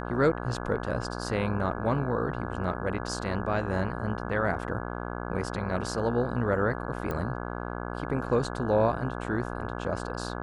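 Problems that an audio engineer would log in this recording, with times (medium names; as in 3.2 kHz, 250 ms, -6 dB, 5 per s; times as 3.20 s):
buzz 60 Hz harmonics 28 -35 dBFS
7.11 s: pop -19 dBFS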